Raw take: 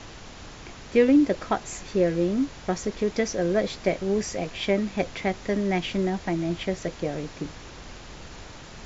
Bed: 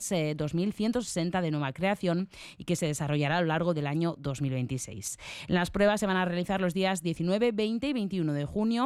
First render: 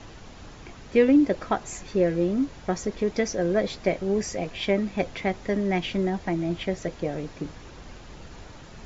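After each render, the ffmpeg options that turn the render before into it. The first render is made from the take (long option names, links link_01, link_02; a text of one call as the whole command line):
ffmpeg -i in.wav -af "afftdn=noise_reduction=6:noise_floor=-44" out.wav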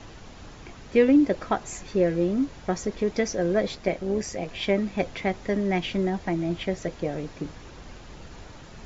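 ffmpeg -i in.wav -filter_complex "[0:a]asettb=1/sr,asplit=3[link_01][link_02][link_03];[link_01]atrim=end=3.754[link_04];[link_02]atrim=start=3.75:end=4.49,asetpts=PTS-STARTPTS,afade=type=in:duration=0.004:curve=qsin,afade=type=out:start_time=0.736:duration=0.004:curve=qsin,tremolo=f=140:d=0.4[link_05];[link_03]atrim=start=4.486[link_06];[link_04][link_05]acrossfade=duration=0.004:curve1=hsin:curve2=qsin[link_07];[link_07][link_06]acrossfade=duration=0.004:curve1=qsin:curve2=hsin" out.wav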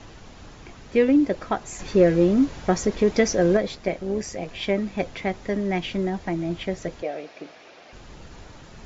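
ffmpeg -i in.wav -filter_complex "[0:a]asettb=1/sr,asplit=3[link_01][link_02][link_03];[link_01]atrim=end=1.794[link_04];[link_02]atrim=start=1.79:end=3.57,asetpts=PTS-STARTPTS,afade=type=in:duration=0.004:curve=qsin,afade=type=out:start_time=1.776:duration=0.004:curve=qsin,acontrast=51[link_05];[link_03]atrim=start=3.566[link_06];[link_04][link_05]acrossfade=duration=0.004:curve1=hsin:curve2=qsin[link_07];[link_07][link_06]acrossfade=duration=0.004:curve1=qsin:curve2=hsin,asettb=1/sr,asplit=3[link_08][link_09][link_10];[link_08]atrim=end=7.024[link_11];[link_09]atrim=start=7.02:end=7.93,asetpts=PTS-STARTPTS,afade=type=in:duration=0.004:curve=qsin,afade=type=out:start_time=0.906:duration=0.004:curve=qsin,highpass=410,equalizer=frequency=660:width_type=q:width=4:gain=8,equalizer=frequency=980:width_type=q:width=4:gain=-5,equalizer=frequency=2400:width_type=q:width=4:gain=5,lowpass=frequency=5800:width=0.5412,lowpass=frequency=5800:width=1.3066[link_12];[link_10]atrim=start=7.926[link_13];[link_11][link_12]acrossfade=duration=0.004:curve1=hsin:curve2=qsin[link_14];[link_14][link_13]acrossfade=duration=0.004:curve1=qsin:curve2=hsin" out.wav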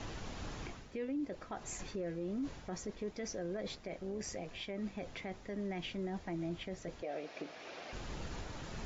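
ffmpeg -i in.wav -af "areverse,acompressor=threshold=-30dB:ratio=6,areverse,alimiter=level_in=8dB:limit=-24dB:level=0:latency=1:release=328,volume=-8dB" out.wav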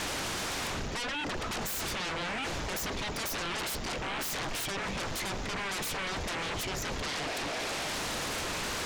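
ffmpeg -i in.wav -af "aeval=exprs='0.0266*sin(PI/2*7.94*val(0)/0.0266)':channel_layout=same" out.wav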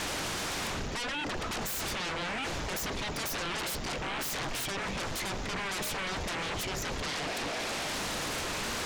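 ffmpeg -i in.wav -i bed.wav -filter_complex "[1:a]volume=-23.5dB[link_01];[0:a][link_01]amix=inputs=2:normalize=0" out.wav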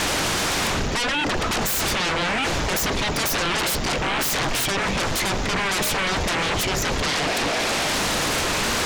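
ffmpeg -i in.wav -af "volume=11.5dB" out.wav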